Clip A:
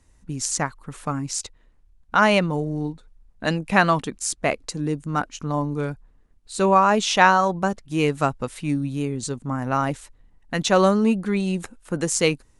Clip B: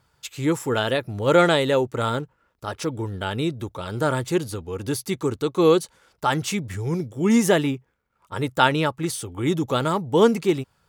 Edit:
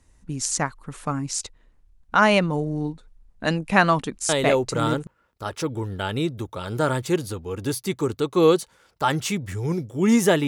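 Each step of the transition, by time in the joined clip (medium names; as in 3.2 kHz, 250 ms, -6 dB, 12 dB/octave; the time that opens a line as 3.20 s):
clip A
4.68 s: go over to clip B from 1.90 s, crossfade 0.78 s logarithmic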